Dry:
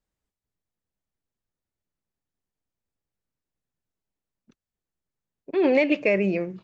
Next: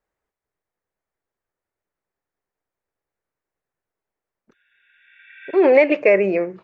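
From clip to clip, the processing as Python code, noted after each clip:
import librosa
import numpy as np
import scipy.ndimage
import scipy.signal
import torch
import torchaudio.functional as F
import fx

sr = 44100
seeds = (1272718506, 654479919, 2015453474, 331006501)

y = fx.spec_repair(x, sr, seeds[0], start_s=4.55, length_s=0.99, low_hz=1400.0, high_hz=3800.0, source='both')
y = fx.band_shelf(y, sr, hz=890.0, db=11.5, octaves=3.0)
y = y * librosa.db_to_amplitude(-3.0)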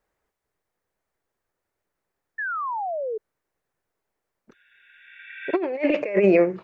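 y = fx.over_compress(x, sr, threshold_db=-19.0, ratio=-0.5)
y = fx.spec_paint(y, sr, seeds[1], shape='fall', start_s=2.38, length_s=0.8, low_hz=420.0, high_hz=1800.0, level_db=-28.0)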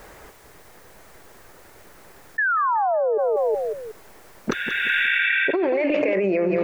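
y = fx.echo_feedback(x, sr, ms=185, feedback_pct=37, wet_db=-14.0)
y = fx.env_flatten(y, sr, amount_pct=100)
y = y * librosa.db_to_amplitude(-6.5)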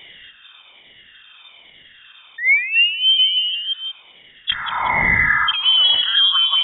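y = fx.spec_ripple(x, sr, per_octave=0.86, drift_hz=1.2, depth_db=19)
y = fx.cheby_harmonics(y, sr, harmonics=(6,), levels_db=(-41,), full_scale_db=-4.0)
y = fx.freq_invert(y, sr, carrier_hz=3600)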